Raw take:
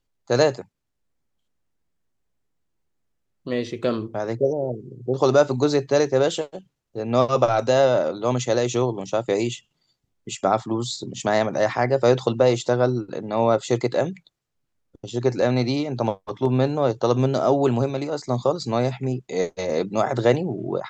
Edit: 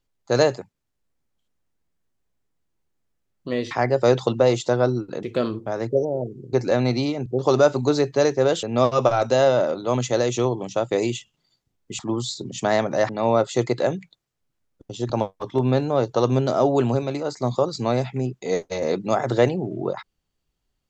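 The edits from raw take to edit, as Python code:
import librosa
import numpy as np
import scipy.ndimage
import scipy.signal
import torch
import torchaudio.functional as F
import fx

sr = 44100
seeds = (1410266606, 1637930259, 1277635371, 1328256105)

y = fx.edit(x, sr, fx.cut(start_s=6.38, length_s=0.62),
    fx.cut(start_s=10.36, length_s=0.25),
    fx.move(start_s=11.71, length_s=1.52, to_s=3.71),
    fx.move(start_s=15.24, length_s=0.73, to_s=5.01), tone=tone)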